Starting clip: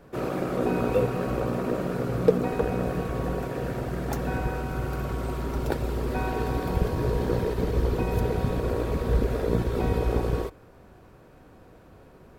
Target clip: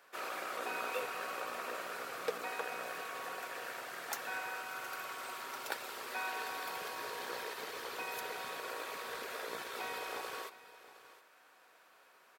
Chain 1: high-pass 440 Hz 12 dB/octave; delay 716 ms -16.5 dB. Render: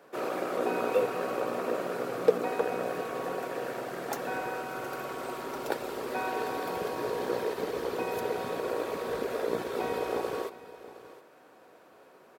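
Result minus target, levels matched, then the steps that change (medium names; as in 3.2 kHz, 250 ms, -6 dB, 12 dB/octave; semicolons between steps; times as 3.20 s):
500 Hz band +6.5 dB
change: high-pass 1.3 kHz 12 dB/octave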